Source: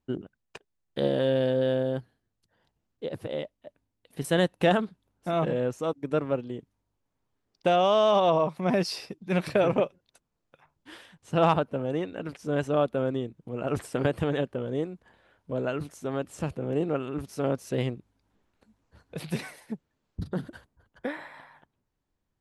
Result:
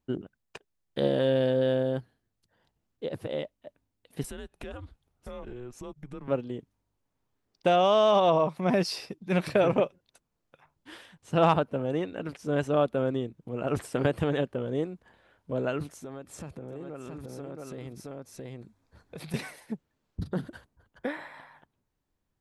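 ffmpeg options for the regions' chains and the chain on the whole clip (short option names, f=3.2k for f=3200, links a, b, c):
-filter_complex "[0:a]asettb=1/sr,asplit=3[a][b][c];[a]atrim=end=4.234[d];[b]atrim=start=4.23:end=6.28,asetpts=PTS-STARTPTS,afade=t=in:d=0.004:c=qsin,afade=t=out:st=2.046:d=0.004:c=qsin,acompressor=threshold=-38dB:ratio=6:attack=3.2:release=140:knee=1:detection=peak,afreqshift=-130[e];[c]atrim=start=6.276[f];[d][e]acrossfade=d=0.004:c1=hsin:c2=qsin[g];[g][f]acrossfade=d=0.004:c1=qsin:c2=hsin,asettb=1/sr,asplit=3[h][i][j];[h]atrim=end=16.014[k];[i]atrim=start=16.01:end=19.34,asetpts=PTS-STARTPTS,afade=t=in:d=0.004:c=qsin,afade=t=out:st=3.326:d=0.004:c=qsin,bandreject=f=2.9k:w=9.3,aecho=1:1:672:0.596,atrim=end_sample=146853,acompressor=threshold=-37dB:ratio=6:attack=3.2:release=140:knee=1:detection=peak[l];[j]atrim=start=19.336[m];[k][l]acrossfade=d=0.004:c1=hsin:c2=qsin[n];[n][m]acrossfade=d=0.004:c1=qsin:c2=hsin"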